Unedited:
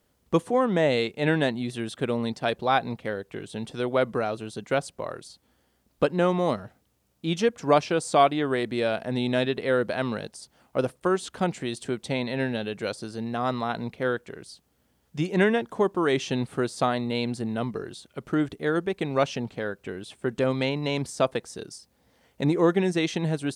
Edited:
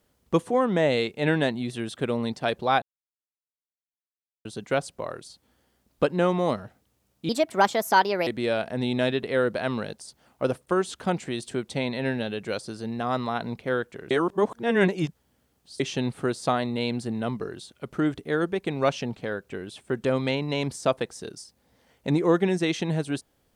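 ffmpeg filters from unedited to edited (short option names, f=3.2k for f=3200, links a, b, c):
-filter_complex "[0:a]asplit=7[a][b][c][d][e][f][g];[a]atrim=end=2.82,asetpts=PTS-STARTPTS,afade=t=out:st=2.816:d=0.004:c=hsin[h];[b]atrim=start=2.82:end=4.45,asetpts=PTS-STARTPTS,volume=0[i];[c]atrim=start=4.45:end=7.294,asetpts=PTS-STARTPTS,afade=t=in:d=0.004:c=hsin[j];[d]atrim=start=7.29:end=8.61,asetpts=PTS-STARTPTS,asetrate=59535,aresample=44100[k];[e]atrim=start=8.606:end=14.452[l];[f]atrim=start=14.448:end=16.142,asetpts=PTS-STARTPTS,areverse[m];[g]atrim=start=16.138[n];[h][i][j]concat=n=3:v=0:a=1[o];[o][k]acrossfade=d=0.004:c1=hsin:c2=hsin[p];[p][l]acrossfade=d=0.004:c1=hsin:c2=hsin[q];[q][m]acrossfade=d=0.004:c1=hsin:c2=hsin[r];[r][n]acrossfade=d=0.004:c1=hsin:c2=hsin"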